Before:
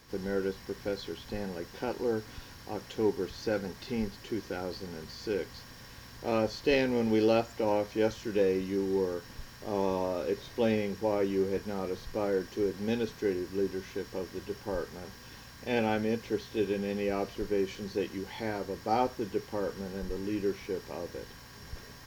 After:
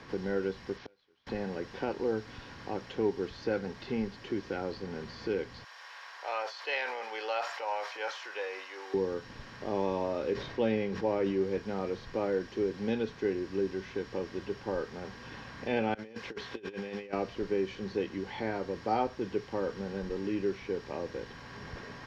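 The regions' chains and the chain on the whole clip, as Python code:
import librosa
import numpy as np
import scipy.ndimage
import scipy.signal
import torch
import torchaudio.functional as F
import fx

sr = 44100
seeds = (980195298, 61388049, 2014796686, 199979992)

y = fx.chain(x, sr, fx.cvsd(bps=32000),
    fx.low_shelf(hz=370.0, db=-10.0),
    fx.gate_flip(shuts_db=-36.0, range_db=-32), at=(0.77, 1.27))
y = fx.chain(y, sr, fx.highpass(hz=730.0, slope=24),
    fx.high_shelf(hz=11000.0, db=8.0),
    fx.sustainer(db_per_s=47.0), at=(5.64, 8.94))
y = fx.chain(y, sr, fx.high_shelf(hz=9800.0, db=-8.5),
    fx.sustainer(db_per_s=50.0), at=(10.33, 11.42))
y = fx.chain(y, sr, fx.low_shelf(hz=450.0, db=-11.5),
    fx.over_compress(threshold_db=-42.0, ratio=-0.5), at=(15.94, 17.13))
y = scipy.signal.sosfilt(scipy.signal.butter(2, 3800.0, 'lowpass', fs=sr, output='sos'), y)
y = fx.low_shelf(y, sr, hz=74.0, db=-6.0)
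y = fx.band_squash(y, sr, depth_pct=40)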